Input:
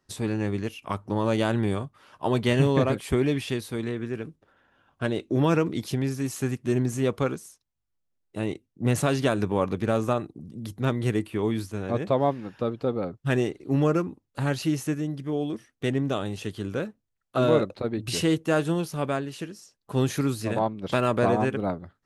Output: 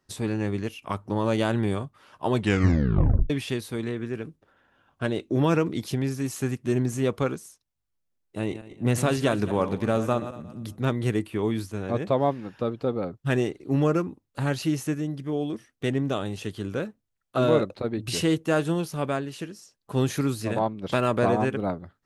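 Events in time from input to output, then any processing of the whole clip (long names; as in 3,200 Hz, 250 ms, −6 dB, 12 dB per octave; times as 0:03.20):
0:02.35: tape stop 0.95 s
0:08.39–0:10.78: feedback delay that plays each chunk backwards 113 ms, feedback 47%, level −12 dB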